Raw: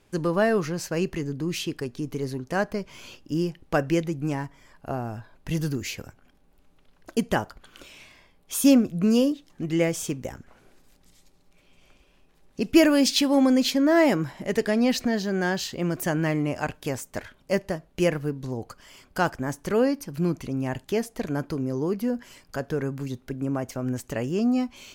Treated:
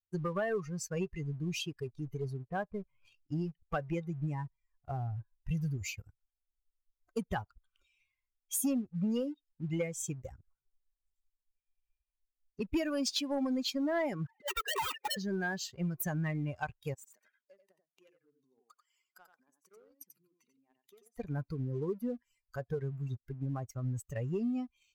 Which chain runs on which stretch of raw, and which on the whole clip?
2.46–3.04 whine 570 Hz -59 dBFS + air absorption 400 m
14.26–15.17 sine-wave speech + compressor 4:1, threshold -24 dBFS + wrapped overs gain 23.5 dB
16.94–21.17 compressor 16:1, threshold -36 dBFS + HPF 220 Hz 24 dB/oct + echo 89 ms -3 dB
whole clip: per-bin expansion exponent 2; compressor 4:1, threshold -35 dBFS; sample leveller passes 1

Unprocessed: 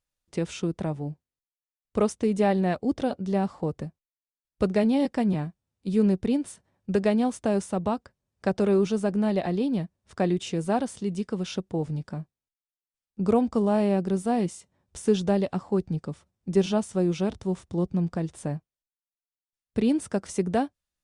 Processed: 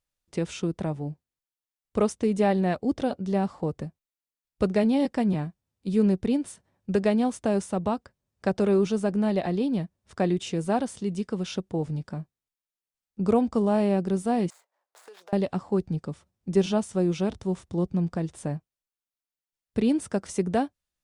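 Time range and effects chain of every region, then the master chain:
14.5–15.33 median filter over 15 samples + HPF 610 Hz 24 dB/oct + compressor, threshold -45 dBFS
whole clip: dry

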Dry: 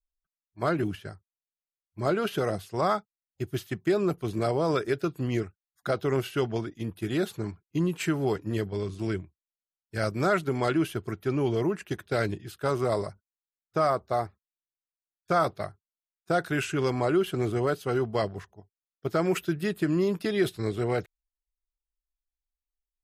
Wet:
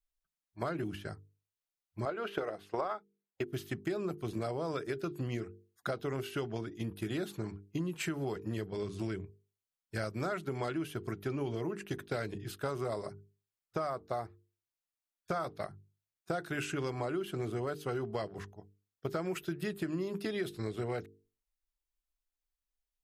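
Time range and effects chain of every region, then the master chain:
2.05–3.53 tone controls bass -15 dB, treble -13 dB + transient shaper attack +10 dB, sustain -2 dB
whole clip: notches 50/100/150/200/250/300/350/400/450 Hz; compressor 5:1, threshold -33 dBFS

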